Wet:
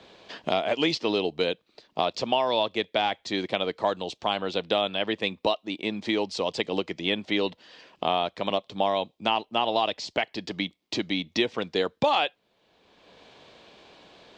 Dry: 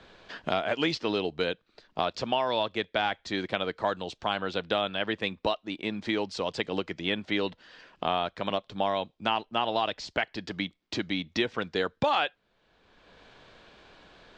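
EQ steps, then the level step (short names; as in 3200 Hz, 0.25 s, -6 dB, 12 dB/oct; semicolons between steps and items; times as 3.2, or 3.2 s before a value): HPF 200 Hz 6 dB/oct; bell 1500 Hz -9 dB 0.68 oct; +4.5 dB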